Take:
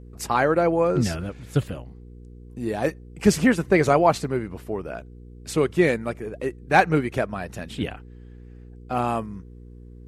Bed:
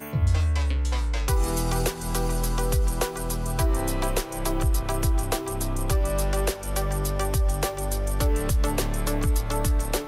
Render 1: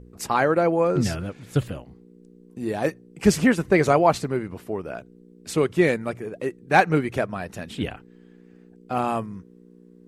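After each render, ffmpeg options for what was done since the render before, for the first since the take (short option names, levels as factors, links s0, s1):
-af "bandreject=f=60:t=h:w=4,bandreject=f=120:t=h:w=4"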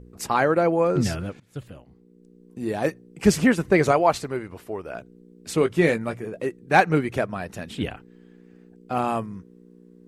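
-filter_complex "[0:a]asettb=1/sr,asplit=3[s0][s1][s2];[s0]atrim=end=3.914[s3];[s1]atrim=start=3.91:end=4.95,asetpts=PTS-STARTPTS,afade=t=in:d=0.004:c=qsin,afade=t=out:st=1.036:d=0.004:c=qsin,equalizer=f=180:t=o:w=1.8:g=-7[s4];[s2]atrim=start=4.946[s5];[s3][s4]acrossfade=d=0.004:c1=hsin:c2=qsin[s6];[s6][s5]acrossfade=d=0.004:c1=qsin:c2=hsin,asettb=1/sr,asplit=3[s7][s8][s9];[s7]atrim=end=5.594[s10];[s8]atrim=start=5.59:end=6.46,asetpts=PTS-STARTPTS,afade=t=in:d=0.004:c=qsin,afade=t=out:st=0.866:d=0.004:c=qsin,asplit=2[s11][s12];[s12]adelay=18,volume=0.376[s13];[s11][s13]amix=inputs=2:normalize=0,atrim=end_sample=38367[s14];[s9]atrim=start=6.456[s15];[s10][s14]acrossfade=d=0.004:c1=hsin:c2=qsin[s16];[s16][s15]acrossfade=d=0.004:c1=qsin:c2=hsin,asplit=2[s17][s18];[s17]atrim=end=1.4,asetpts=PTS-STARTPTS,afade=t=out:st=1.396:d=0.004:c=hsin:silence=0.0891251[s19];[s18]atrim=start=1.4,asetpts=PTS-STARTPTS,afade=t=in:d=1.22:silence=0.0891251[s20];[s19][s20]concat=n=2:v=0:a=1"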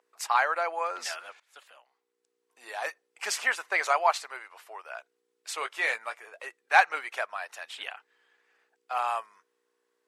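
-af "highpass=f=810:w=0.5412,highpass=f=810:w=1.3066,highshelf=f=9700:g=-8"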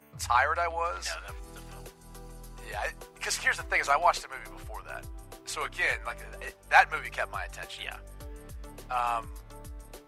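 -filter_complex "[1:a]volume=0.0891[s0];[0:a][s0]amix=inputs=2:normalize=0"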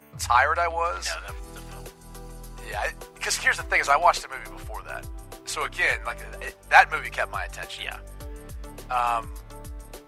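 -af "volume=1.78"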